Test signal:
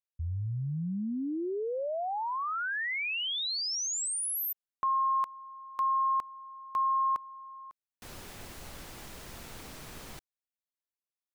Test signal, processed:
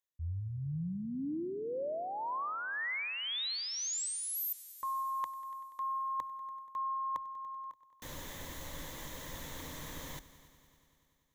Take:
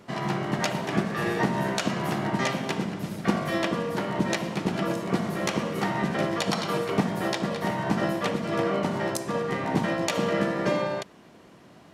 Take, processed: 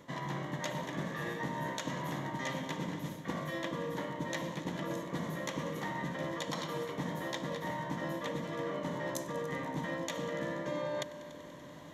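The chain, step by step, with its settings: ripple EQ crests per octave 1.1, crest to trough 9 dB; reverse; compressor 5:1, threshold -36 dBFS; reverse; multi-head echo 96 ms, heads all three, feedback 63%, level -22 dB

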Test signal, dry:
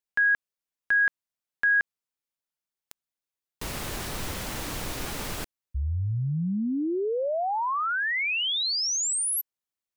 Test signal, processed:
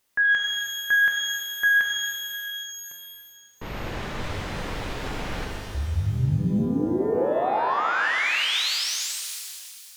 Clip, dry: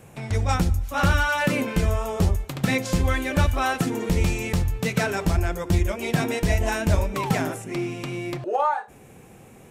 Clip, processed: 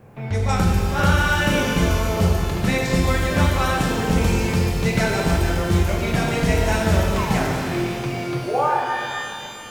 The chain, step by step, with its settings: low-pass opened by the level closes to 1600 Hz, open at -18 dBFS; requantised 12-bit, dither triangular; shimmer reverb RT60 2.5 s, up +12 st, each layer -8 dB, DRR -0.5 dB

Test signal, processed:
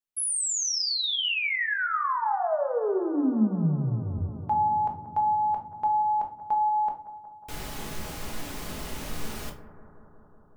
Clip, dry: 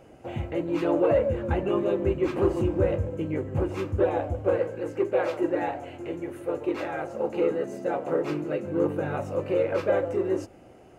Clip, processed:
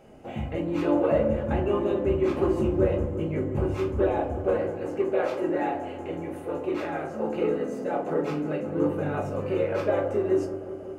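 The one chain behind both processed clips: resonator 290 Hz, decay 0.48 s, harmonics odd, mix 40%; analogue delay 0.184 s, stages 2048, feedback 79%, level -14.5 dB; shoebox room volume 280 m³, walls furnished, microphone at 1.4 m; gain +2 dB

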